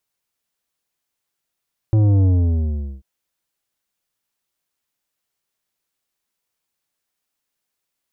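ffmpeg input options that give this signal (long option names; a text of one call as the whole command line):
ffmpeg -f lavfi -i "aevalsrc='0.237*clip((1.09-t)/0.78,0,1)*tanh(3.16*sin(2*PI*110*1.09/log(65/110)*(exp(log(65/110)*t/1.09)-1)))/tanh(3.16)':duration=1.09:sample_rate=44100" out.wav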